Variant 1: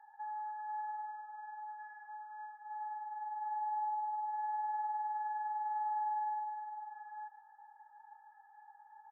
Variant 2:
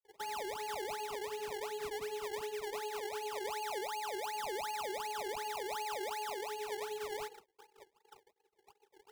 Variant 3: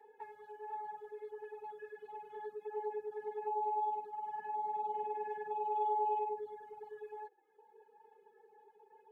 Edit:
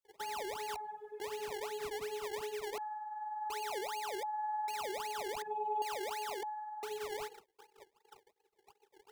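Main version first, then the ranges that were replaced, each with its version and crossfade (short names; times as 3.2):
2
0.76–1.2 from 3
2.78–3.5 from 1
4.23–4.68 from 1
5.42–5.82 from 3
6.43–6.83 from 1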